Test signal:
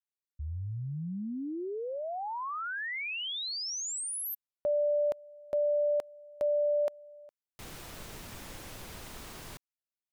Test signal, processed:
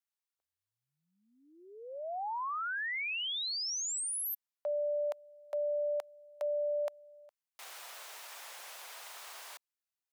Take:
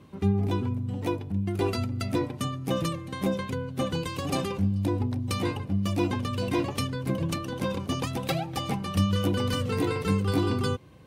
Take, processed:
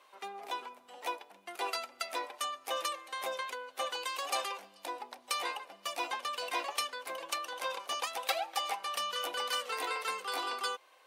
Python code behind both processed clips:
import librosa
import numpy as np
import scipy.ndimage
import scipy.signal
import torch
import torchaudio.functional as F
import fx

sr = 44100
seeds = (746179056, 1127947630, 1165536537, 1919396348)

y = scipy.signal.sosfilt(scipy.signal.butter(4, 650.0, 'highpass', fs=sr, output='sos'), x)